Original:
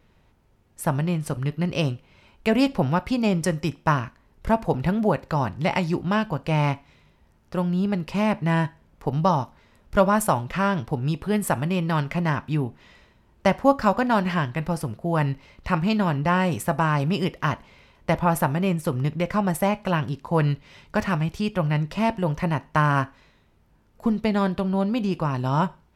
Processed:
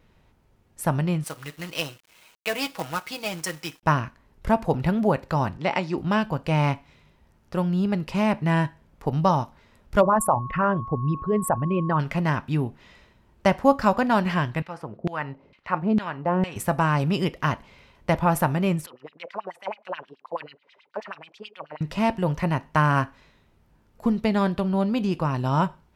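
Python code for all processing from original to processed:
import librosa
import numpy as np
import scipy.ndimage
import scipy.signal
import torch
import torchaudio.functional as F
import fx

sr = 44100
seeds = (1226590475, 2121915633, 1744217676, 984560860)

y = fx.chain(x, sr, fx.highpass(hz=1300.0, slope=6),
    fx.comb(ms=6.3, depth=0.64),
    fx.quant_companded(bits=4), at=(1.24, 3.83))
y = fx.chain(y, sr, fx.highpass(hz=230.0, slope=12),
    fx.air_absorb(metres=71.0), at=(5.57, 5.98))
y = fx.envelope_sharpen(y, sr, power=2.0, at=(10.0, 11.99), fade=0.02)
y = fx.dmg_tone(y, sr, hz=1100.0, level_db=-34.0, at=(10.0, 11.99), fade=0.02)
y = fx.chain(y, sr, fx.low_shelf(hz=460.0, db=7.0),
    fx.filter_lfo_bandpass(shape='saw_down', hz=2.2, low_hz=250.0, high_hz=3300.0, q=1.2), at=(14.62, 16.56))
y = fx.chain(y, sr, fx.highpass(hz=210.0, slope=12),
    fx.filter_lfo_bandpass(shape='sine', hz=9.3, low_hz=440.0, high_hz=4000.0, q=3.8), at=(18.86, 21.81))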